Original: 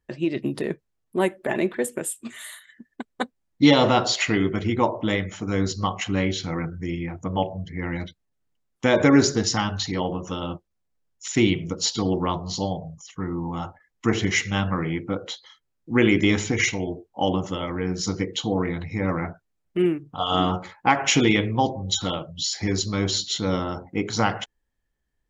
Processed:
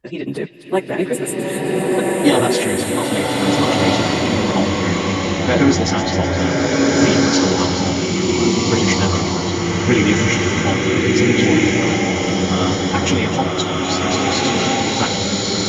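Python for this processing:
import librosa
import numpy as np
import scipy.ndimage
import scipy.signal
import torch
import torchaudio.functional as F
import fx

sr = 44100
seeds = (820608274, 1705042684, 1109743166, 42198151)

p1 = fx.rider(x, sr, range_db=5, speed_s=2.0)
p2 = p1 + fx.echo_wet_highpass(p1, sr, ms=418, feedback_pct=59, hz=2200.0, wet_db=-8.5, dry=0)
p3 = fx.stretch_vocoder_free(p2, sr, factor=0.62)
p4 = fx.rev_bloom(p3, sr, seeds[0], attack_ms=1550, drr_db=-5.0)
y = F.gain(torch.from_numpy(p4), 4.0).numpy()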